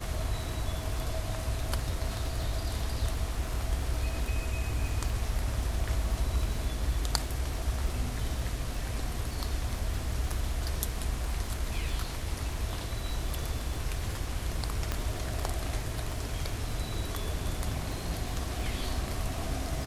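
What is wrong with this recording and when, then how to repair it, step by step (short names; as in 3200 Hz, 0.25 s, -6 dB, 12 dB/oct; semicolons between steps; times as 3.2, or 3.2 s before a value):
crackle 55/s -38 dBFS
14.92 pop -15 dBFS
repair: de-click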